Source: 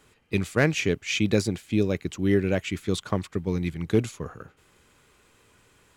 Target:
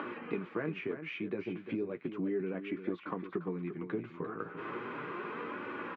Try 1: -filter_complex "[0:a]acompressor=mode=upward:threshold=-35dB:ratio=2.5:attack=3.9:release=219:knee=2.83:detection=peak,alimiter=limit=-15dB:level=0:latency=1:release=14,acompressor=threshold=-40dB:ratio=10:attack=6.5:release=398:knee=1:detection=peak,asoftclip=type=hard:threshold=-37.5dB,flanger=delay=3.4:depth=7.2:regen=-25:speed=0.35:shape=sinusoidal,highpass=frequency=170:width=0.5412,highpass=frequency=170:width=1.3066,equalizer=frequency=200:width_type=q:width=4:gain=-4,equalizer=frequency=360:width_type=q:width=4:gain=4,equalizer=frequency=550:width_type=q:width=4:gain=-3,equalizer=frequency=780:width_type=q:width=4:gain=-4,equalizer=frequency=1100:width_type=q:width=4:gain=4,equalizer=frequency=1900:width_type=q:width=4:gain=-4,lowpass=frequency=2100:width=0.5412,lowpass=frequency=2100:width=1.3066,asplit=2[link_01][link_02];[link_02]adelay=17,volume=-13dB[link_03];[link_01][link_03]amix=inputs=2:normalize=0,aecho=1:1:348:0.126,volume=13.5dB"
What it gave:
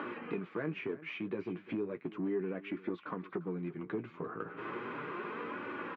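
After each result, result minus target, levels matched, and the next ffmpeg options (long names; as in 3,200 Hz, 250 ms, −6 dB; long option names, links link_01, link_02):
hard clipping: distortion +16 dB; echo-to-direct −8 dB
-filter_complex "[0:a]acompressor=mode=upward:threshold=-35dB:ratio=2.5:attack=3.9:release=219:knee=2.83:detection=peak,alimiter=limit=-15dB:level=0:latency=1:release=14,acompressor=threshold=-40dB:ratio=10:attack=6.5:release=398:knee=1:detection=peak,asoftclip=type=hard:threshold=-30.5dB,flanger=delay=3.4:depth=7.2:regen=-25:speed=0.35:shape=sinusoidal,highpass=frequency=170:width=0.5412,highpass=frequency=170:width=1.3066,equalizer=frequency=200:width_type=q:width=4:gain=-4,equalizer=frequency=360:width_type=q:width=4:gain=4,equalizer=frequency=550:width_type=q:width=4:gain=-3,equalizer=frequency=780:width_type=q:width=4:gain=-4,equalizer=frequency=1100:width_type=q:width=4:gain=4,equalizer=frequency=1900:width_type=q:width=4:gain=-4,lowpass=frequency=2100:width=0.5412,lowpass=frequency=2100:width=1.3066,asplit=2[link_01][link_02];[link_02]adelay=17,volume=-13dB[link_03];[link_01][link_03]amix=inputs=2:normalize=0,aecho=1:1:348:0.126,volume=13.5dB"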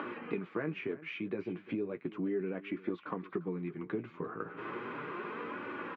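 echo-to-direct −8 dB
-filter_complex "[0:a]acompressor=mode=upward:threshold=-35dB:ratio=2.5:attack=3.9:release=219:knee=2.83:detection=peak,alimiter=limit=-15dB:level=0:latency=1:release=14,acompressor=threshold=-40dB:ratio=10:attack=6.5:release=398:knee=1:detection=peak,asoftclip=type=hard:threshold=-30.5dB,flanger=delay=3.4:depth=7.2:regen=-25:speed=0.35:shape=sinusoidal,highpass=frequency=170:width=0.5412,highpass=frequency=170:width=1.3066,equalizer=frequency=200:width_type=q:width=4:gain=-4,equalizer=frequency=360:width_type=q:width=4:gain=4,equalizer=frequency=550:width_type=q:width=4:gain=-3,equalizer=frequency=780:width_type=q:width=4:gain=-4,equalizer=frequency=1100:width_type=q:width=4:gain=4,equalizer=frequency=1900:width_type=q:width=4:gain=-4,lowpass=frequency=2100:width=0.5412,lowpass=frequency=2100:width=1.3066,asplit=2[link_01][link_02];[link_02]adelay=17,volume=-13dB[link_03];[link_01][link_03]amix=inputs=2:normalize=0,aecho=1:1:348:0.316,volume=13.5dB"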